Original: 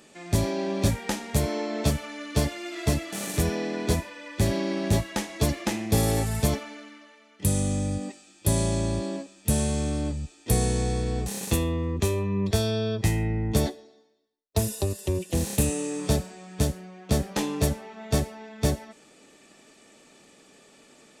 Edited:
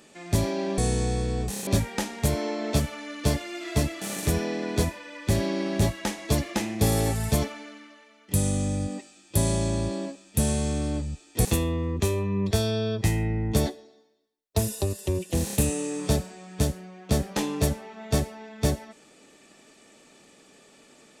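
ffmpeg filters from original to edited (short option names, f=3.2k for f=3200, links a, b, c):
-filter_complex "[0:a]asplit=4[a][b][c][d];[a]atrim=end=0.782[e];[b]atrim=start=10.558:end=11.452[f];[c]atrim=start=0.778:end=10.562[g];[d]atrim=start=11.448[h];[e][f]acrossfade=d=0.004:c1=hsin:c2=hsin[i];[i][g]acrossfade=d=0.004:c1=hsin:c2=hsin[j];[j][h]acrossfade=d=0.004:c1=hsin:c2=hsin"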